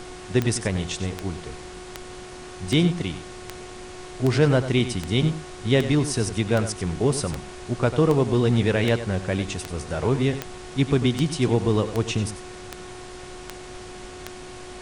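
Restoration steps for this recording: de-click; de-hum 365 Hz, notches 31; noise print and reduce 29 dB; inverse comb 94 ms -12 dB

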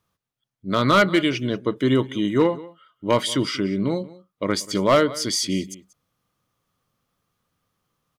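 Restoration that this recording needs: clip repair -9.5 dBFS; inverse comb 0.186 s -20 dB

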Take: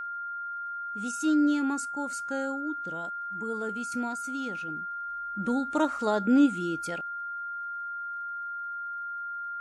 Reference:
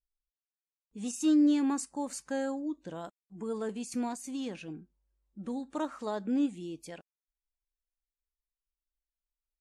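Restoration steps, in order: de-click; notch 1400 Hz, Q 30; gain 0 dB, from 5.08 s -8 dB

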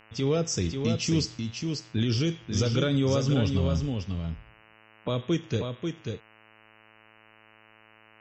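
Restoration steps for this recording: de-hum 109.4 Hz, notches 27; inverse comb 0.54 s -5.5 dB

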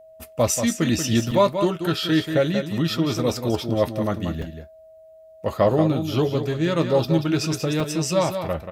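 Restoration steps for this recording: notch 640 Hz, Q 30; interpolate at 1.31/4.42/7.8, 2.9 ms; inverse comb 0.184 s -8 dB

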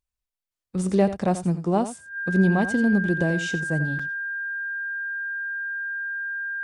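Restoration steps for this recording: notch 1600 Hz, Q 30; interpolate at 3.99, 4.7 ms; inverse comb 87 ms -12.5 dB

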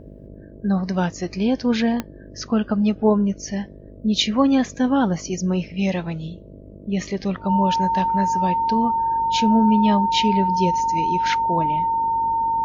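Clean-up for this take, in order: de-click; de-hum 50 Hz, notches 13; notch 910 Hz, Q 30; noise print and reduce 25 dB

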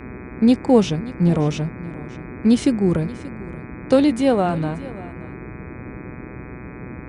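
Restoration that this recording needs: de-hum 124.9 Hz, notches 20; noise print and reduce 27 dB; inverse comb 0.581 s -18 dB

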